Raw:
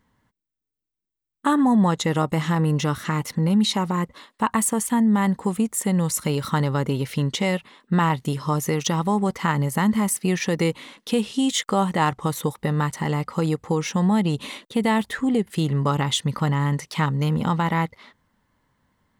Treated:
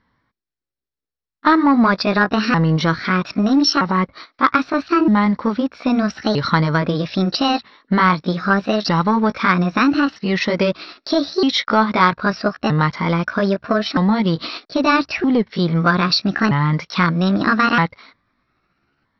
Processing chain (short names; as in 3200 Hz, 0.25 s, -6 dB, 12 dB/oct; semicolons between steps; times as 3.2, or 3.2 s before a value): repeated pitch sweeps +6.5 st, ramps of 1.27 s; sample leveller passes 1; rippled Chebyshev low-pass 5700 Hz, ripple 6 dB; gain +8 dB